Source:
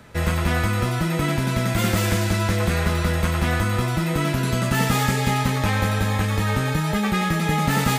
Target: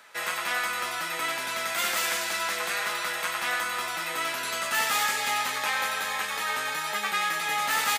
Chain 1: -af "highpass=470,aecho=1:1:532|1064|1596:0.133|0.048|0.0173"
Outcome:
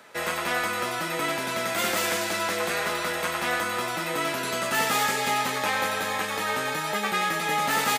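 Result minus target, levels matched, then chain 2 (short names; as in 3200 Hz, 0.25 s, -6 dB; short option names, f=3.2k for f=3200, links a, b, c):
500 Hz band +7.0 dB
-af "highpass=970,aecho=1:1:532|1064|1596:0.133|0.048|0.0173"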